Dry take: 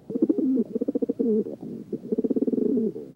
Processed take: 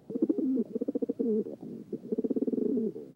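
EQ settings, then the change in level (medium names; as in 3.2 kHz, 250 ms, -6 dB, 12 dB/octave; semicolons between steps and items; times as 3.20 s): bass shelf 70 Hz -6.5 dB; -5.5 dB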